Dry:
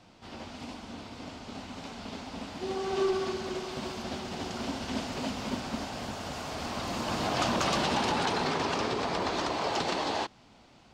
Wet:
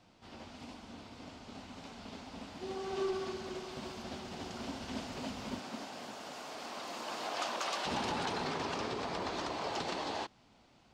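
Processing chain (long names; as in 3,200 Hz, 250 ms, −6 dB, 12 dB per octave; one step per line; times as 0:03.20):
0:05.58–0:07.85: high-pass filter 190 Hz → 560 Hz 12 dB per octave
level −7 dB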